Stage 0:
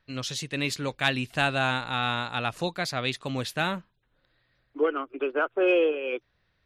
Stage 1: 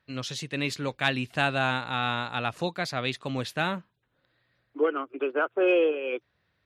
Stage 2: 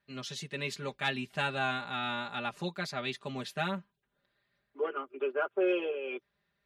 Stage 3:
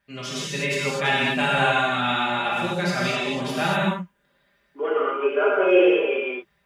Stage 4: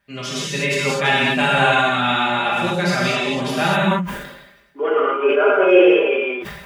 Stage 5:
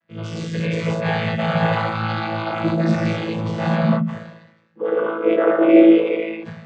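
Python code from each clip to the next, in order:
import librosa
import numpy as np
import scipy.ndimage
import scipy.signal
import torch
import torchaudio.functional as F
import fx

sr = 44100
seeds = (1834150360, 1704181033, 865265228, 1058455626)

y1 = scipy.signal.sosfilt(scipy.signal.butter(2, 79.0, 'highpass', fs=sr, output='sos'), x)
y1 = fx.high_shelf(y1, sr, hz=5100.0, db=-6.0)
y2 = y1 + 0.97 * np.pad(y1, (int(5.0 * sr / 1000.0), 0))[:len(y1)]
y2 = y2 * 10.0 ** (-8.5 / 20.0)
y3 = fx.notch(y2, sr, hz=4100.0, q=7.0)
y3 = fx.rev_gated(y3, sr, seeds[0], gate_ms=270, shape='flat', drr_db=-6.5)
y3 = y3 * 10.0 ** (5.5 / 20.0)
y4 = fx.sustainer(y3, sr, db_per_s=55.0)
y4 = y4 * 10.0 ** (4.5 / 20.0)
y5 = fx.chord_vocoder(y4, sr, chord='bare fifth', root=45)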